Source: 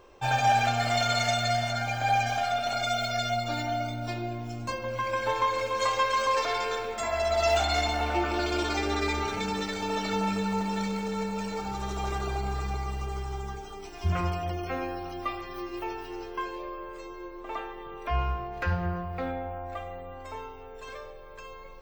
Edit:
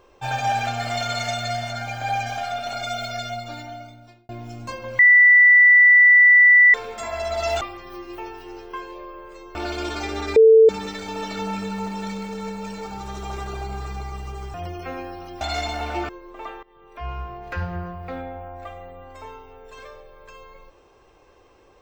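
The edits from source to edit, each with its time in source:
0:03.08–0:04.29: fade out
0:04.99–0:06.74: beep over 1,970 Hz −8.5 dBFS
0:07.61–0:08.29: swap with 0:15.25–0:17.19
0:09.10–0:09.43: beep over 445 Hz −7.5 dBFS
0:13.28–0:14.38: remove
0:17.73–0:18.48: fade in, from −19 dB

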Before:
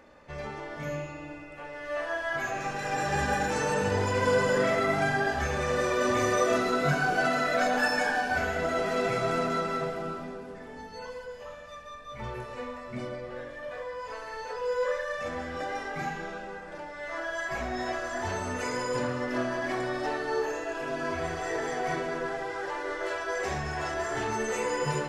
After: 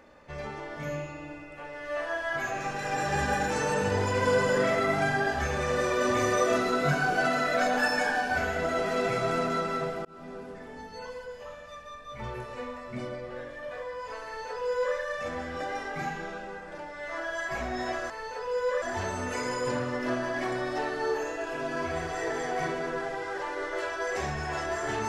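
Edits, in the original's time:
0:10.05–0:10.39: fade in
0:14.24–0:14.96: duplicate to 0:18.10

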